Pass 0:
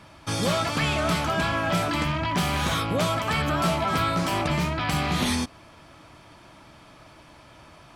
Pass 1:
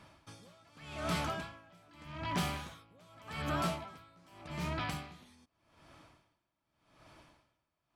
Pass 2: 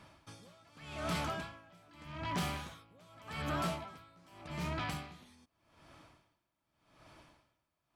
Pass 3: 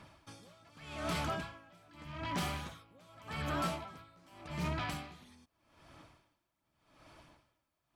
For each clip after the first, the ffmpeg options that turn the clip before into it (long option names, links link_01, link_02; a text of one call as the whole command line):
ffmpeg -i in.wav -af "aeval=exprs='val(0)*pow(10,-29*(0.5-0.5*cos(2*PI*0.84*n/s))/20)':channel_layout=same,volume=-8.5dB" out.wav
ffmpeg -i in.wav -af "asoftclip=type=tanh:threshold=-27.5dB" out.wav
ffmpeg -i in.wav -af "aphaser=in_gain=1:out_gain=1:delay=3.8:decay=0.26:speed=1.5:type=sinusoidal" out.wav